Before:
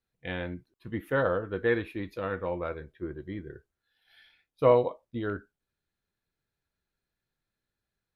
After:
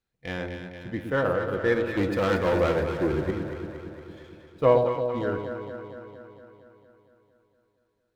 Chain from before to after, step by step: 1.97–3.31 s: waveshaping leveller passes 3; echo whose repeats swap between lows and highs 115 ms, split 820 Hz, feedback 80%, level -5 dB; sliding maximum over 3 samples; trim +1.5 dB

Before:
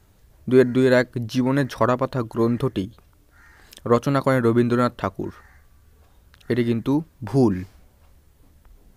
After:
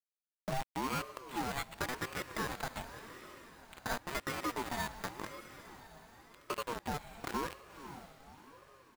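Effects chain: 1.58–3.95 s: spectral peaks clipped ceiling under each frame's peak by 14 dB; high-pass 710 Hz 6 dB/octave; comb 4.5 ms, depth 93%; compression 5:1, threshold -36 dBFS, peak gain reduction 20.5 dB; word length cut 6-bit, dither none; careless resampling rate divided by 8×, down filtered, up hold; echo that smears into a reverb 537 ms, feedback 50%, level -11.5 dB; ring modulator with a swept carrier 610 Hz, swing 35%, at 0.92 Hz; trim +2 dB

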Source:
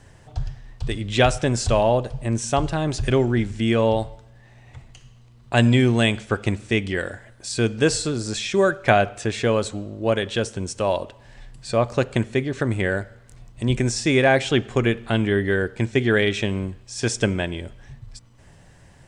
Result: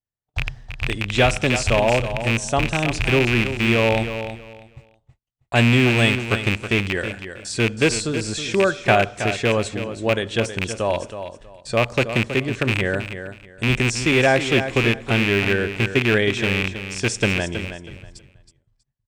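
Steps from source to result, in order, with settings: rattle on loud lows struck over -24 dBFS, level -9 dBFS; gate -39 dBFS, range -47 dB; feedback delay 321 ms, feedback 22%, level -10 dB

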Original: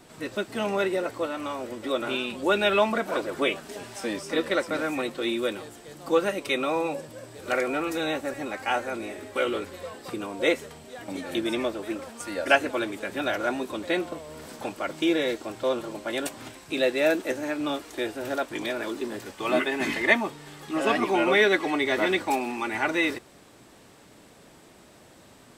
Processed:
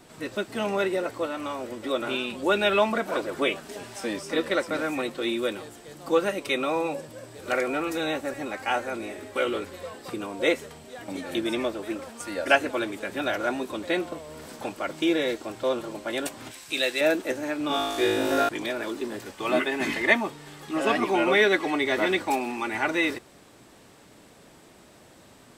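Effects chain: 16.51–17.01 s: tilt shelf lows -7.5 dB, about 1.4 kHz; 17.68–18.49 s: flutter echo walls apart 3.2 m, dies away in 1.3 s

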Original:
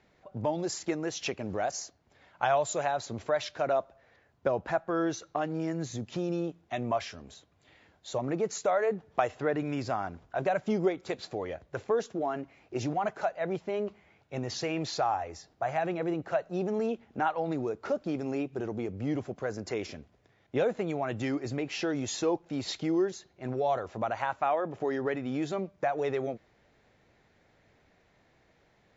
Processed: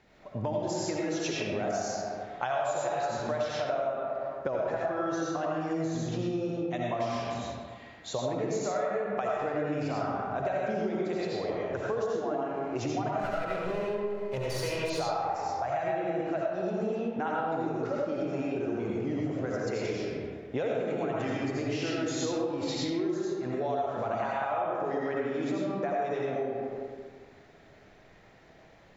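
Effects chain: 13.19–14.90 s: comb filter that takes the minimum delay 2 ms; algorithmic reverb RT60 1.6 s, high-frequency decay 0.55×, pre-delay 45 ms, DRR -5.5 dB; compression 4:1, threshold -32 dBFS, peak gain reduction 14 dB; trim +2.5 dB

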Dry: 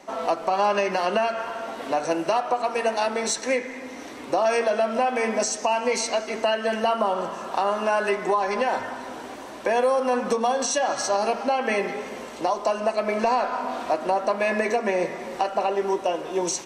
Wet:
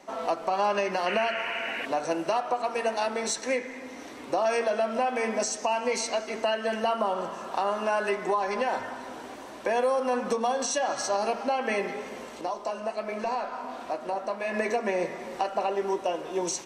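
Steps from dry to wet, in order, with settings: 1.06–1.86 s: painted sound noise 1.4–3 kHz -30 dBFS; 12.41–14.54 s: flange 1.3 Hz, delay 9.9 ms, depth 9 ms, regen -60%; trim -4 dB

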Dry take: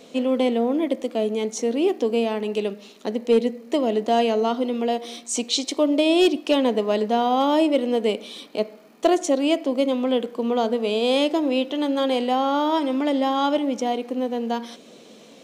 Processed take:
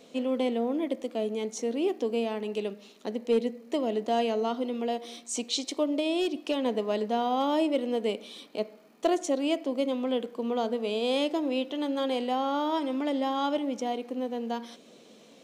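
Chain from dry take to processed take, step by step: 5.83–6.66 s: compression, threshold -17 dBFS, peak gain reduction 5 dB; trim -7 dB

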